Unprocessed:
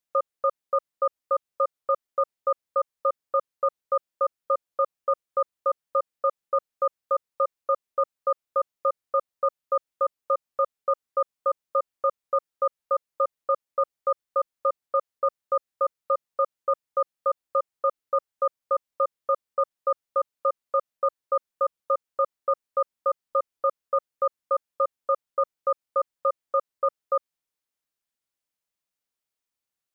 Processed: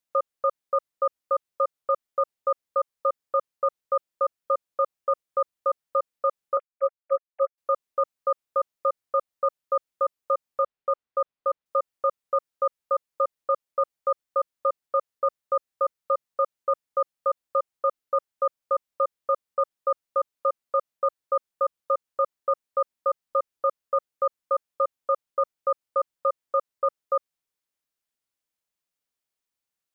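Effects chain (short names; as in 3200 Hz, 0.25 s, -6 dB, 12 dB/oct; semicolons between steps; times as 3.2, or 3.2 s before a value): 6.57–7.58 sine-wave speech; 10.62–11.66 air absorption 200 m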